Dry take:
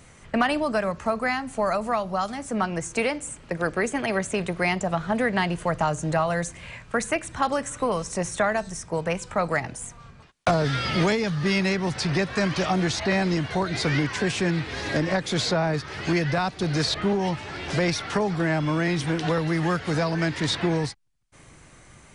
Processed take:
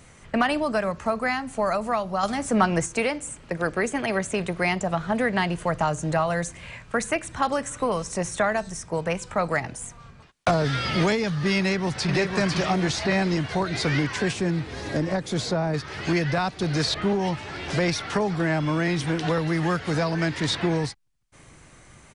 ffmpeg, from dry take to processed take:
-filter_complex "[0:a]asettb=1/sr,asplit=3[s0][s1][s2];[s0]atrim=end=2.234[s3];[s1]atrim=start=2.23:end=2.86,asetpts=PTS-STARTPTS,afade=t=in:d=0.004:c=qsin,afade=t=out:st=0.626:d=0.004:c=qsin,acontrast=39[s4];[s2]atrim=start=2.856[s5];[s3][s4]acrossfade=d=0.004:c1=hsin:c2=qsin[s6];[s6][s5]acrossfade=d=0.004:c1=qsin:c2=hsin,asplit=2[s7][s8];[s8]afade=t=in:st=11.58:d=0.01,afade=t=out:st=12.11:d=0.01,aecho=0:1:500|1000|1500|2000|2500|3000:0.595662|0.268048|0.120622|0.0542797|0.0244259|0.0109916[s9];[s7][s9]amix=inputs=2:normalize=0,asettb=1/sr,asplit=3[s10][s11][s12];[s10]atrim=end=14.334[s13];[s11]atrim=start=14.33:end=15.74,asetpts=PTS-STARTPTS,afade=t=in:d=0.004:c=qsin,afade=t=out:st=1.406:d=0.004:c=qsin,equalizer=f=2500:w=0.46:g=-7[s14];[s12]atrim=start=15.736[s15];[s13][s14]acrossfade=d=0.004:c1=hsin:c2=qsin[s16];[s16][s15]acrossfade=d=0.004:c1=qsin:c2=hsin"

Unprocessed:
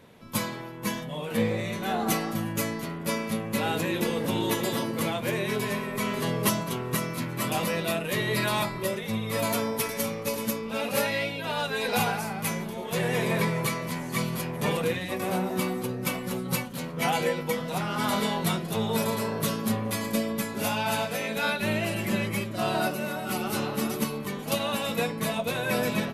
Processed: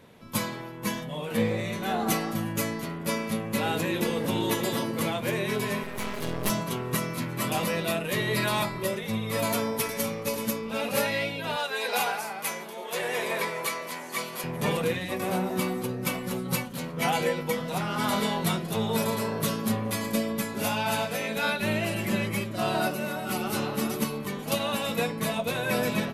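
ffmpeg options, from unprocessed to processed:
-filter_complex "[0:a]asettb=1/sr,asplit=3[s0][s1][s2];[s0]atrim=end=5.834[s3];[s1]atrim=start=5.83:end=6.5,asetpts=PTS-STARTPTS,afade=t=in:d=0.004:c=qsin,afade=t=out:st=0.666:d=0.004:c=qsin,aeval=exprs='max(val(0),0)':c=same[s4];[s2]atrim=start=6.496[s5];[s3][s4]acrossfade=d=0.004:c1=hsin:c2=qsin[s6];[s6][s5]acrossfade=d=0.004:c1=qsin:c2=hsin,asettb=1/sr,asplit=3[s7][s8][s9];[s7]atrim=end=11.564[s10];[s8]atrim=start=11.56:end=14.44,asetpts=PTS-STARTPTS,afade=t=in:d=0.004:c=qsin,afade=t=out:st=2.876:d=0.004:c=qsin,highpass=440[s11];[s9]atrim=start=14.436[s12];[s10][s11]acrossfade=d=0.004:c1=hsin:c2=qsin[s13];[s13][s12]acrossfade=d=0.004:c1=qsin:c2=hsin"

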